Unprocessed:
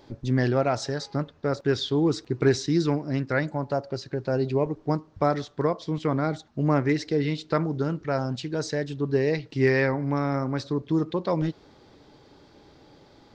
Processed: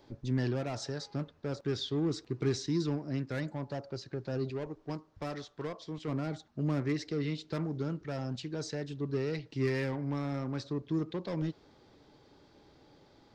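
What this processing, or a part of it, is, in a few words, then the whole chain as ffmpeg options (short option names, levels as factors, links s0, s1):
one-band saturation: -filter_complex "[0:a]acrossover=split=370|2500[s0][s1][s2];[s1]asoftclip=type=tanh:threshold=0.0266[s3];[s0][s3][s2]amix=inputs=3:normalize=0,asettb=1/sr,asplit=3[s4][s5][s6];[s4]atrim=end=4.504[s7];[s5]atrim=start=4.5:end=6.08,asetpts=PTS-STARTPTS,afade=t=in:d=0.004:c=qsin,afade=t=out:st=1.576:d=0.004:c=qsin,equalizer=f=150:w=0.48:g=-6[s8];[s6]atrim=start=6.076[s9];[s7][s8]acrossfade=d=0.004:c1=hsin:c2=qsin[s10];[s10][s9]acrossfade=d=0.004:c1=qsin:c2=hsin,volume=0.447"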